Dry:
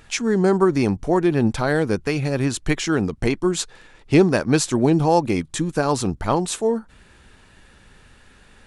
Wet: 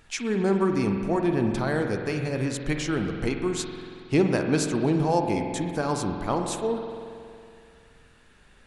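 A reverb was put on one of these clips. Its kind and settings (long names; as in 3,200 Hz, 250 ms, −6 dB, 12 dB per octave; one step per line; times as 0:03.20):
spring reverb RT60 2.4 s, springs 46 ms, chirp 20 ms, DRR 4 dB
level −7 dB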